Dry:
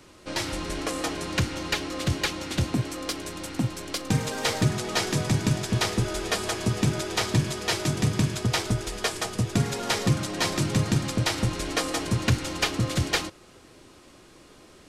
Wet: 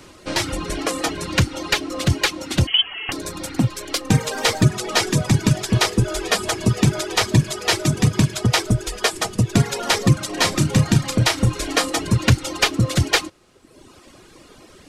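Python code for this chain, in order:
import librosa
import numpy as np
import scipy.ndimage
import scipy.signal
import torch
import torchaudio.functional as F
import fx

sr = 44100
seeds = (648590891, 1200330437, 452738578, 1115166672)

y = fx.freq_invert(x, sr, carrier_hz=3200, at=(2.67, 3.12))
y = fx.dereverb_blind(y, sr, rt60_s=1.1)
y = fx.doubler(y, sr, ms=33.0, db=-11.0, at=(10.26, 11.89))
y = y * librosa.db_to_amplitude(8.0)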